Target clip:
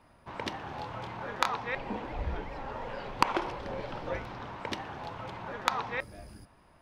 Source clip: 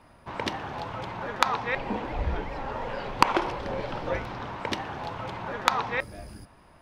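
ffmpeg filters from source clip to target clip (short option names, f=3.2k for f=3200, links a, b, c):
-filter_complex "[0:a]asettb=1/sr,asplit=3[a][b][c];[a]atrim=end=0.644[d];[b]atrim=start=0.64:end=1.5,asetpts=PTS-STARTPTS,afade=t=in:d=0.004:c=qsin,afade=t=out:st=0.856:d=0.004:c=qsin,asplit=2[e][f];[f]adelay=26,volume=-6dB[g];[e][g]amix=inputs=2:normalize=0,atrim=end_sample=37926[h];[c]atrim=start=1.496[i];[d][h]acrossfade=d=0.004:c1=hsin:c2=qsin[j];[j][i]acrossfade=d=0.004:c1=qsin:c2=hsin,volume=-5.5dB"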